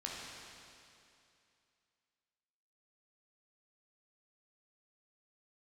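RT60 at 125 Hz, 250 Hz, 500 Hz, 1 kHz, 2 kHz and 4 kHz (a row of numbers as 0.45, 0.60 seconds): 2.6, 2.6, 2.6, 2.6, 2.6, 2.5 seconds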